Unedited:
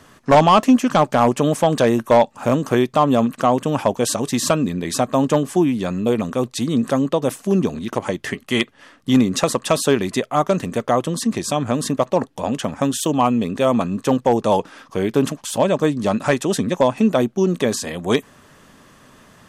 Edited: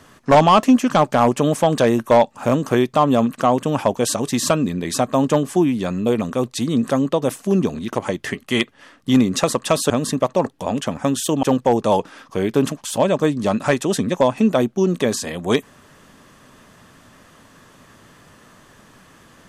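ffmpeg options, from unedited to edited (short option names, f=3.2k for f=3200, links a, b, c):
-filter_complex "[0:a]asplit=3[a][b][c];[a]atrim=end=9.902[d];[b]atrim=start=11.668:end=13.202[e];[c]atrim=start=14.028[f];[d][e]acrossfade=d=0.004:c1=hsin:c2=hsin[g];[g][f]acrossfade=d=0.004:c1=hsin:c2=hsin"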